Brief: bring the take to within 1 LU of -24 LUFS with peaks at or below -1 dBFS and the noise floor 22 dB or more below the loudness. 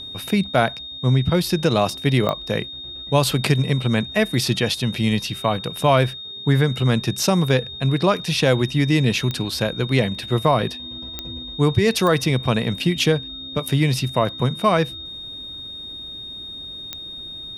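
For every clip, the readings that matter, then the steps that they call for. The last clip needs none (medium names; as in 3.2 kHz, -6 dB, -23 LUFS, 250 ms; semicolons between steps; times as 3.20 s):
clicks found 5; steady tone 3.7 kHz; tone level -32 dBFS; loudness -20.5 LUFS; peak level -2.0 dBFS; loudness target -24.0 LUFS
-> de-click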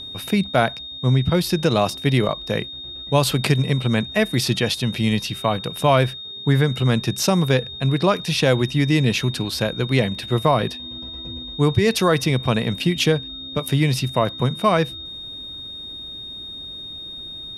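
clicks found 0; steady tone 3.7 kHz; tone level -32 dBFS
-> band-stop 3.7 kHz, Q 30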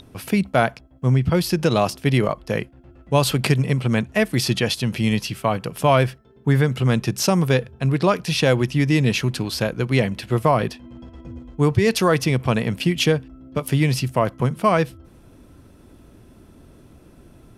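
steady tone not found; loudness -20.5 LUFS; peak level -2.5 dBFS; loudness target -24.0 LUFS
-> trim -3.5 dB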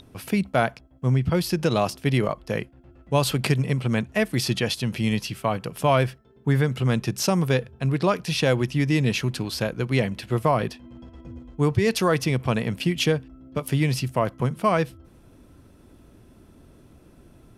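loudness -24.0 LUFS; peak level -6.0 dBFS; noise floor -53 dBFS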